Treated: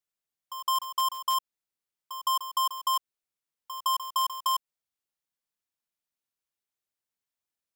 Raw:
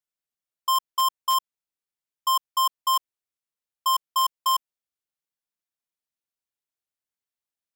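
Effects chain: compressor, threshold -26 dBFS, peak gain reduction 5 dB; reverse echo 0.162 s -12 dB

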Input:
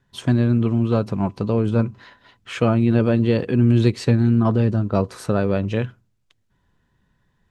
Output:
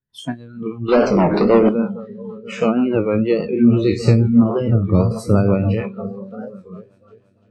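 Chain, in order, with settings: spectral trails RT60 0.45 s; repeats that get brighter 0.344 s, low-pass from 200 Hz, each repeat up 2 oct, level -6 dB; 0.88–1.69 overdrive pedal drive 23 dB, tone 2400 Hz, clips at -4.5 dBFS; spectral noise reduction 23 dB; 4.6–5.81 bell 120 Hz +10.5 dB 0.65 oct; rotary speaker horn 6.3 Hz; dynamic EQ 240 Hz, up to +5 dB, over -33 dBFS, Q 1.4; record warp 33 1/3 rpm, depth 160 cents; gain +2.5 dB

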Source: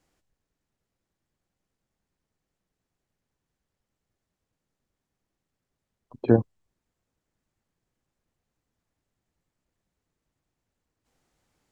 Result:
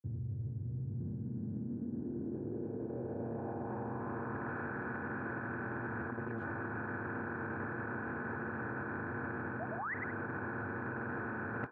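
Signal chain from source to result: per-bin compression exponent 0.2; low-pass sweep 110 Hz -> 1400 Hz, 0.59–4.56; dynamic EQ 460 Hz, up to -5 dB, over -37 dBFS, Q 1.4; painted sound rise, 9.69–9.95, 590–2100 Hz -27 dBFS; band shelf 1500 Hz +10.5 dB; speakerphone echo 0.1 s, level -19 dB; grains 0.122 s, pitch spread up and down by 0 st; limiter -23 dBFS, peak gain reduction 19 dB; HPF 75 Hz 24 dB/oct; reverse; compressor 10:1, threshold -40 dBFS, peak gain reduction 13.5 dB; reverse; Doppler distortion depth 0.14 ms; gain +3.5 dB

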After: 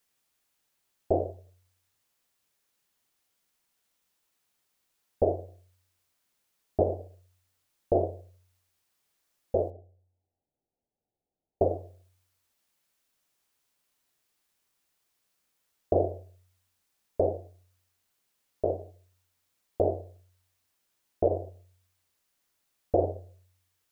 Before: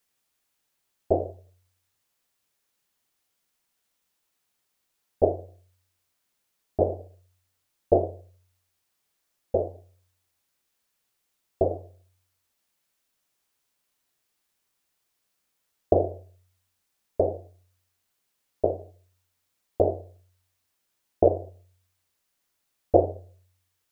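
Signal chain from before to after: 9.7–11.62 elliptic low-pass 790 Hz; limiter -13 dBFS, peak gain reduction 9.5 dB

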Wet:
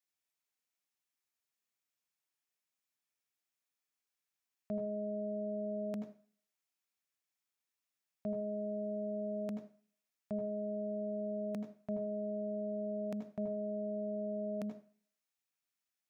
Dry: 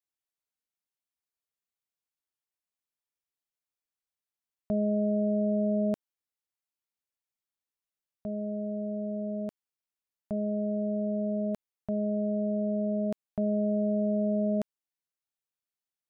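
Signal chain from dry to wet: limiter -29.5 dBFS, peak gain reduction 7.5 dB; reverb RT60 0.45 s, pre-delay 78 ms, DRR 6.5 dB; gain +1.5 dB

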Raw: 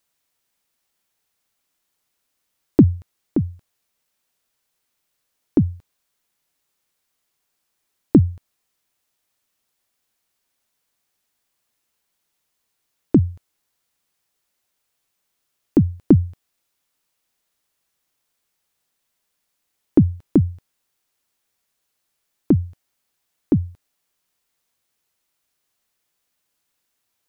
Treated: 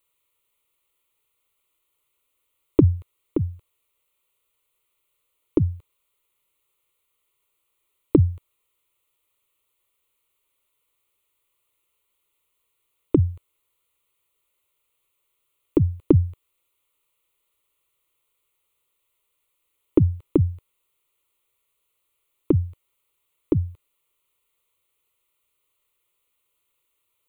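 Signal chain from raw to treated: fixed phaser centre 1100 Hz, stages 8; gain +2.5 dB

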